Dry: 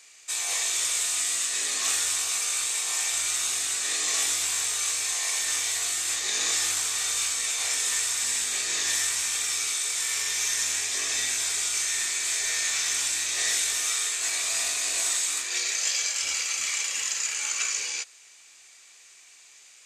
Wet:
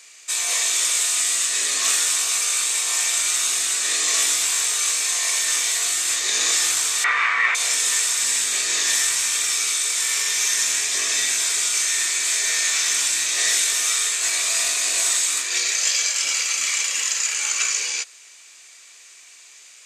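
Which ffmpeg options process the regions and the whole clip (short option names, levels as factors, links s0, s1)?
-filter_complex "[0:a]asettb=1/sr,asplit=3[s0][s1][s2];[s0]atrim=end=7.044[s3];[s1]atrim=start=7.04:end=7.55,asetpts=PTS-STARTPTS,afade=t=in:d=0.004:c=qsin,afade=t=out:st=0.506:d=0.004:c=qsin,lowpass=f=2000:t=q:w=4.9,equalizer=f=1100:t=o:w=0.89:g=12.5[s4];[s2]atrim=start=7.546[s5];[s3][s4]acrossfade=d=0.004:c1=hsin:c2=qsin[s6];[s6][s5]acrossfade=d=0.004:c1=qsin:c2=hsin,highpass=f=220:p=1,bandreject=f=800:w=12,volume=2"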